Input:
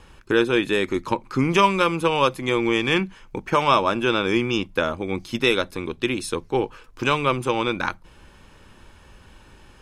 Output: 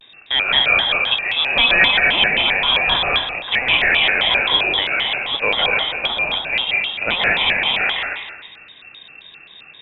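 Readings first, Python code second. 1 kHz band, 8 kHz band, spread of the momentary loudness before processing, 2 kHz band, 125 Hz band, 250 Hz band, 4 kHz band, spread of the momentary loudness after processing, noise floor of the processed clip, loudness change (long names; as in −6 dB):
−0.5 dB, below −20 dB, 9 LU, +11.0 dB, −7.5 dB, −11.0 dB, +14.0 dB, 6 LU, −45 dBFS, +7.0 dB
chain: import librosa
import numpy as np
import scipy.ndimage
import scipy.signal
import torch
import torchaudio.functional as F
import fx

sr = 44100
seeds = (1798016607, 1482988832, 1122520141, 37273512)

y = fx.rattle_buzz(x, sr, strikes_db=-33.0, level_db=-21.0)
y = fx.rev_plate(y, sr, seeds[0], rt60_s=1.3, hf_ratio=0.9, predelay_ms=120, drr_db=-2.5)
y = fx.freq_invert(y, sr, carrier_hz=3200)
y = fx.vibrato_shape(y, sr, shape='square', rate_hz=3.8, depth_cents=250.0)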